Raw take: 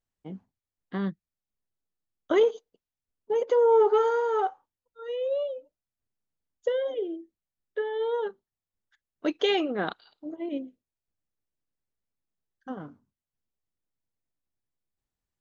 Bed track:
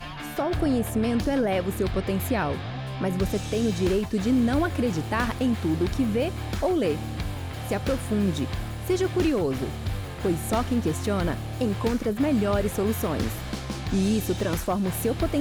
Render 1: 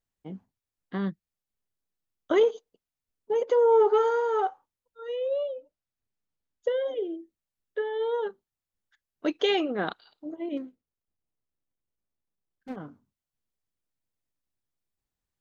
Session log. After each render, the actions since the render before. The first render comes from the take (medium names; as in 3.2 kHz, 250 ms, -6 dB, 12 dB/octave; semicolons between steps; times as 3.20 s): 5.19–6.81 s: distance through air 59 m; 10.57–12.76 s: median filter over 41 samples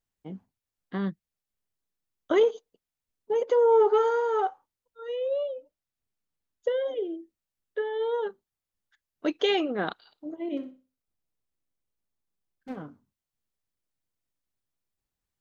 10.38–12.83 s: flutter echo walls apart 10.6 m, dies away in 0.32 s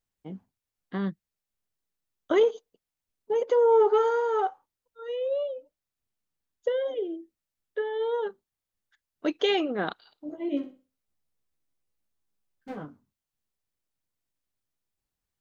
10.27–12.85 s: doubling 14 ms -3 dB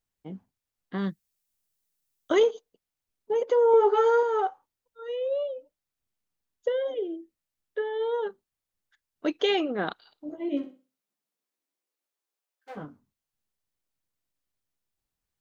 0.98–2.47 s: treble shelf 4.4 kHz +11.5 dB; 3.72–4.23 s: doubling 15 ms -2.5 dB; 10.65–12.75 s: high-pass 130 Hz -> 520 Hz 24 dB/octave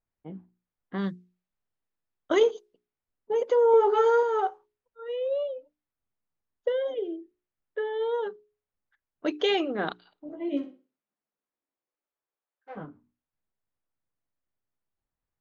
level-controlled noise filter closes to 1.7 kHz, open at -22.5 dBFS; hum notches 60/120/180/240/300/360/420 Hz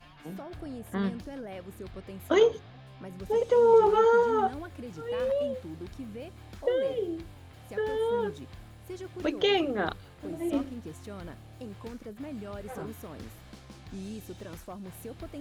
add bed track -16.5 dB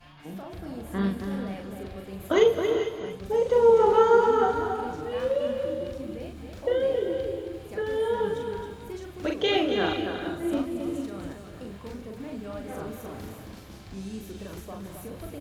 multi-tap echo 41/271 ms -3.5/-6.5 dB; gated-style reverb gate 470 ms rising, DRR 7 dB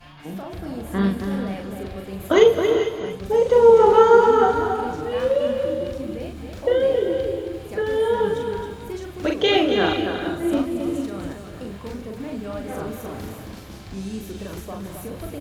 trim +6 dB